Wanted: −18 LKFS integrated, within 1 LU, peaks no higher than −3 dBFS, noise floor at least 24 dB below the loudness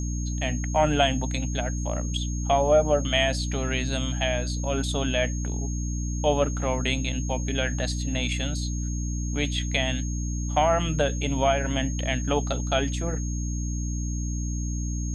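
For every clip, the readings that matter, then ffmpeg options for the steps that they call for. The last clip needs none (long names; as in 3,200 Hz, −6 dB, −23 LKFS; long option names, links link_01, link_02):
mains hum 60 Hz; hum harmonics up to 300 Hz; level of the hum −26 dBFS; interfering tone 6,500 Hz; level of the tone −38 dBFS; integrated loudness −26.5 LKFS; sample peak −8.5 dBFS; target loudness −18.0 LKFS
→ -af "bandreject=frequency=60:width_type=h:width=4,bandreject=frequency=120:width_type=h:width=4,bandreject=frequency=180:width_type=h:width=4,bandreject=frequency=240:width_type=h:width=4,bandreject=frequency=300:width_type=h:width=4"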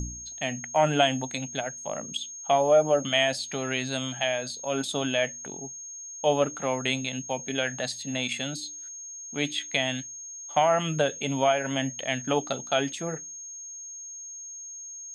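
mains hum none found; interfering tone 6,500 Hz; level of the tone −38 dBFS
→ -af "bandreject=frequency=6500:width=30"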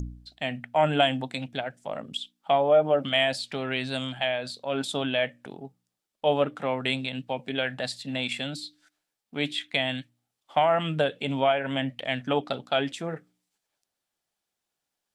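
interfering tone none found; integrated loudness −27.5 LKFS; sample peak −9.5 dBFS; target loudness −18.0 LKFS
→ -af "volume=9.5dB,alimiter=limit=-3dB:level=0:latency=1"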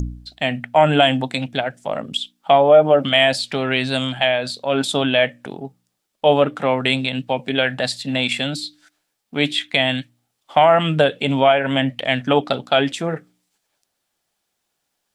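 integrated loudness −18.5 LKFS; sample peak −3.0 dBFS; background noise floor −75 dBFS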